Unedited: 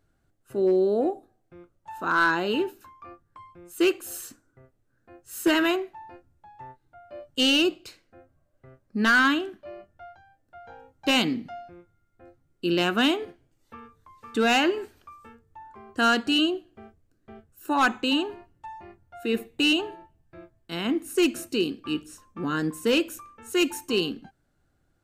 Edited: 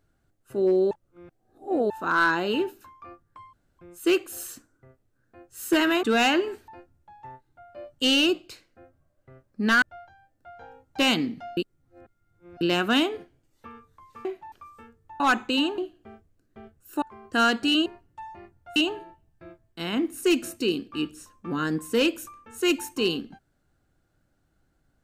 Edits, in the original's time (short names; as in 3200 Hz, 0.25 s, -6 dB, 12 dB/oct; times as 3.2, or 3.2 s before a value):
0.91–1.9 reverse
3.53 insert room tone 0.26 s
5.77–6.04 swap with 14.33–14.98
9.18–9.9 cut
11.65–12.69 reverse
15.66–16.5 swap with 17.74–18.32
19.22–19.68 cut